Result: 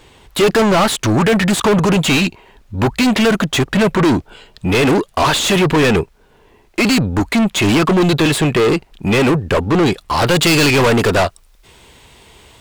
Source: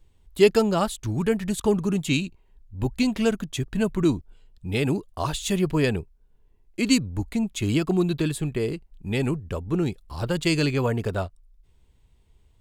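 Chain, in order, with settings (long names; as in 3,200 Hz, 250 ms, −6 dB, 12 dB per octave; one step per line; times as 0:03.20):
mid-hump overdrive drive 37 dB, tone 3,100 Hz, clips at −5 dBFS, from 0:10.22 tone 7,400 Hz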